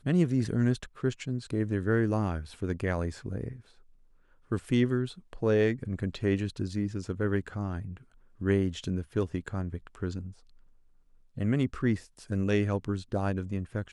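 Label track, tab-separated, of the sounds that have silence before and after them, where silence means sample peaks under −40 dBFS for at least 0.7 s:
4.510000	10.320000	sound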